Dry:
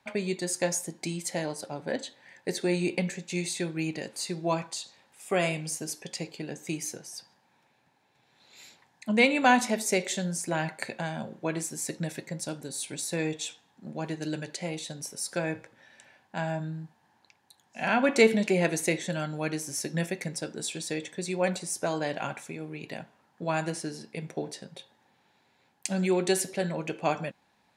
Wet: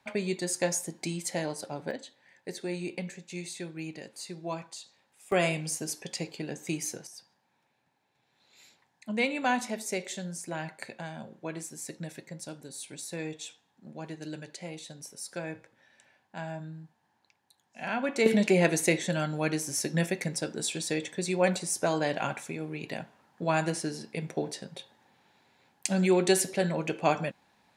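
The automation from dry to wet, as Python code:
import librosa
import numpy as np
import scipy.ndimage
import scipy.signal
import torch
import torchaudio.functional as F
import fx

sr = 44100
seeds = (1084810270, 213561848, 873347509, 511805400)

y = fx.gain(x, sr, db=fx.steps((0.0, -0.5), (1.91, -7.5), (5.32, 0.5), (7.07, -6.5), (18.26, 2.0)))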